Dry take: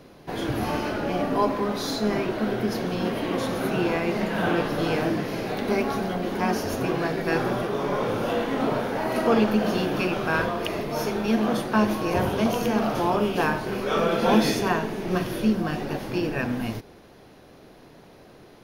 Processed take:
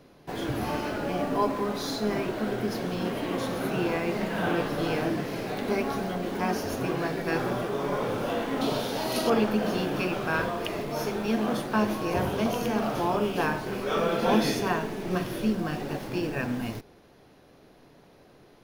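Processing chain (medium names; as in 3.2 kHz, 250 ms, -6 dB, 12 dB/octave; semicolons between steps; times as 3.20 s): 8.61–9.30 s: resonant high shelf 2.7 kHz +10 dB, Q 1.5; reverberation, pre-delay 7 ms, DRR 18 dB; in parallel at -9 dB: word length cut 6-bit, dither none; on the sum: trim -6 dB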